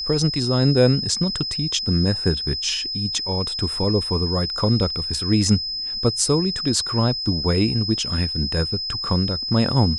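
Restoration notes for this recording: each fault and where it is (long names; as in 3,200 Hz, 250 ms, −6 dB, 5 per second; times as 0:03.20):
whistle 5,100 Hz −25 dBFS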